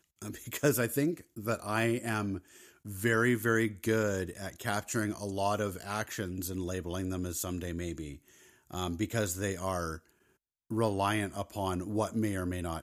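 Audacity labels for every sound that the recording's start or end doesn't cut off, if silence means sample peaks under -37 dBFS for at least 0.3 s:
2.860000	8.140000	sound
8.710000	9.960000	sound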